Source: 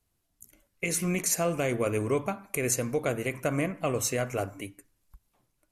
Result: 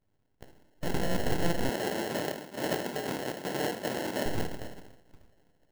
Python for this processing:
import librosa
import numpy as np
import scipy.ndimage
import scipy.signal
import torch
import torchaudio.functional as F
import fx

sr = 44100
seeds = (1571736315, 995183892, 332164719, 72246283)

y = fx.spec_quant(x, sr, step_db=30)
y = fx.rev_double_slope(y, sr, seeds[0], early_s=0.76, late_s=2.7, knee_db=-24, drr_db=-1.0)
y = fx.sample_hold(y, sr, seeds[1], rate_hz=1200.0, jitter_pct=0)
y = np.abs(y)
y = fx.highpass(y, sr, hz=230.0, slope=12, at=(1.69, 4.26))